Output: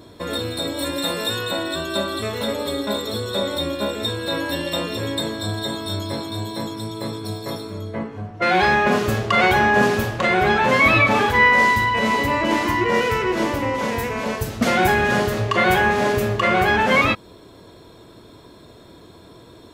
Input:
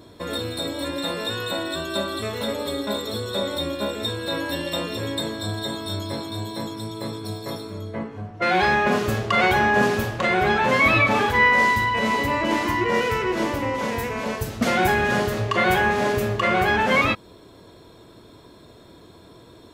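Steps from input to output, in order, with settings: 0.77–1.40 s: peaking EQ 13 kHz +8 dB 1.6 oct; trim +2.5 dB

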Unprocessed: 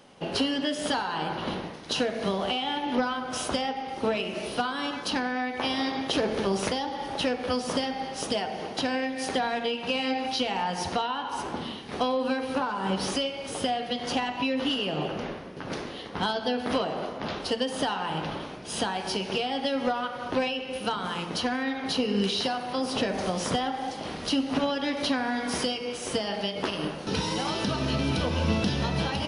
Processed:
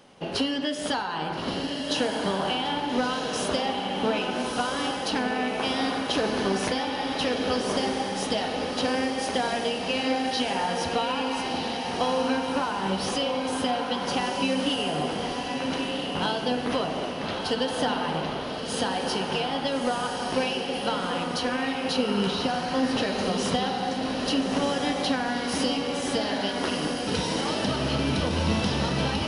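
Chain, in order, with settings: 22.27–22.97 s: tilt EQ -2 dB/octave; echo that smears into a reverb 1323 ms, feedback 48%, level -3 dB

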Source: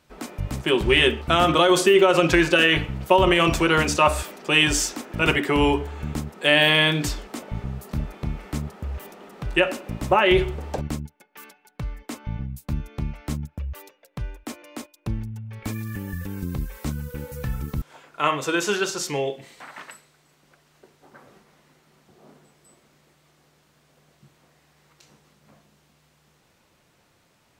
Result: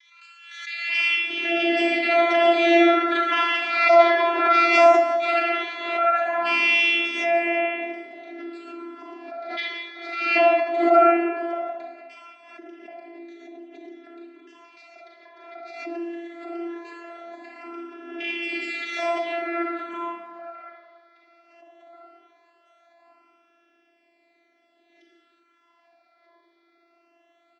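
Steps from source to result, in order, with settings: comb filter that takes the minimum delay 1.5 ms; Chebyshev low-pass 2.7 kHz, order 2; tilt shelf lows -5 dB, about 740 Hz; 12.25–14.63 s: compression 2:1, threshold -44 dBFS, peak gain reduction 9.5 dB; vocoder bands 16, saw 340 Hz; phase shifter stages 12, 0.18 Hz, lowest notch 150–1400 Hz; bands offset in time highs, lows 780 ms, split 1.9 kHz; reverberation RT60 1.5 s, pre-delay 33 ms, DRR -3 dB; swell ahead of each attack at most 54 dB/s

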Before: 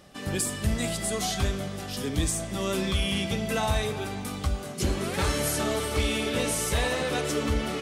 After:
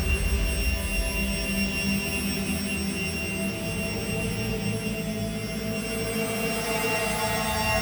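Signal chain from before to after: sorted samples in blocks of 16 samples; Paulstretch 11×, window 0.25 s, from 2.95 s

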